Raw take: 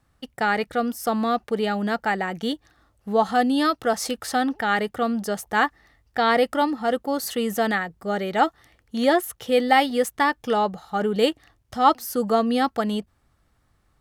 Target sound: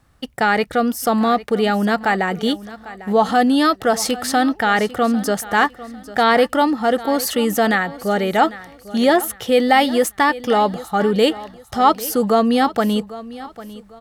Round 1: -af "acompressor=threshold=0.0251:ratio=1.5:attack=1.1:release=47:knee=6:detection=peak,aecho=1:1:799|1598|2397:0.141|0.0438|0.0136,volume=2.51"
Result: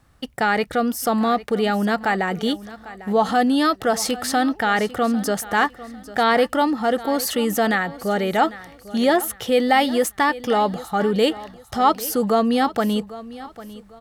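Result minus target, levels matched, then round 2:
compression: peak gain reduction +3 dB
-af "acompressor=threshold=0.0708:ratio=1.5:attack=1.1:release=47:knee=6:detection=peak,aecho=1:1:799|1598|2397:0.141|0.0438|0.0136,volume=2.51"

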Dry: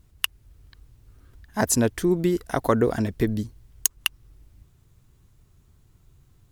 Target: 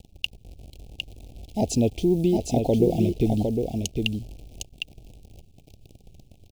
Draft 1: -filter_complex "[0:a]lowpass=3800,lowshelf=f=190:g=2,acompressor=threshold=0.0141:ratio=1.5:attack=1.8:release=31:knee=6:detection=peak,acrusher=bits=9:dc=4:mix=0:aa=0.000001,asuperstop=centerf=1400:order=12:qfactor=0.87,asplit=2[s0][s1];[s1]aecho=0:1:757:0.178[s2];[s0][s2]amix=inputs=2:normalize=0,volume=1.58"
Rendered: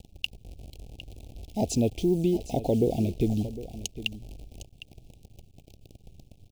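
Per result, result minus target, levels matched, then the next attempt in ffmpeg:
echo-to-direct -10 dB; compression: peak gain reduction +3 dB
-filter_complex "[0:a]lowpass=3800,lowshelf=f=190:g=2,acompressor=threshold=0.0141:ratio=1.5:attack=1.8:release=31:knee=6:detection=peak,acrusher=bits=9:dc=4:mix=0:aa=0.000001,asuperstop=centerf=1400:order=12:qfactor=0.87,asplit=2[s0][s1];[s1]aecho=0:1:757:0.562[s2];[s0][s2]amix=inputs=2:normalize=0,volume=1.58"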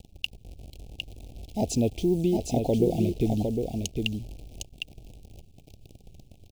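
compression: peak gain reduction +3 dB
-filter_complex "[0:a]lowpass=3800,lowshelf=f=190:g=2,acompressor=threshold=0.0398:ratio=1.5:attack=1.8:release=31:knee=6:detection=peak,acrusher=bits=9:dc=4:mix=0:aa=0.000001,asuperstop=centerf=1400:order=12:qfactor=0.87,asplit=2[s0][s1];[s1]aecho=0:1:757:0.562[s2];[s0][s2]amix=inputs=2:normalize=0,volume=1.58"

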